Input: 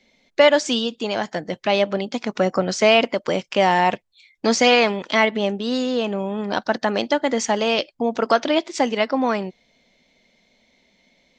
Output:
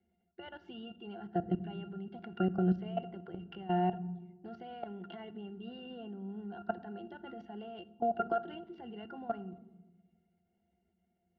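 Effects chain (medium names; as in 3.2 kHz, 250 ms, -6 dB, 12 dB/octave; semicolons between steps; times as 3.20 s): modulation noise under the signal 21 dB; treble shelf 2.1 kHz +7 dB; band-stop 930 Hz, Q 27; compression 6:1, threshold -20 dBFS, peak gain reduction 12 dB; level-controlled noise filter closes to 2.4 kHz, open at -20.5 dBFS; pitch-class resonator F, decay 0.13 s; level held to a coarse grid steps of 17 dB; distance through air 350 m; on a send: reverberation RT60 1.2 s, pre-delay 3 ms, DRR 15 dB; on the sum: trim +6.5 dB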